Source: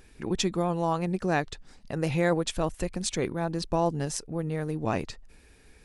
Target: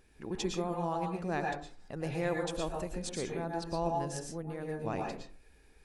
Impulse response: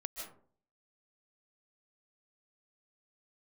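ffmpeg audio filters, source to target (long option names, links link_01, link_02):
-filter_complex "[0:a]equalizer=frequency=570:width=0.51:gain=2.5[link_01];[1:a]atrim=start_sample=2205,asetrate=57330,aresample=44100[link_02];[link_01][link_02]afir=irnorm=-1:irlink=0,volume=-4.5dB"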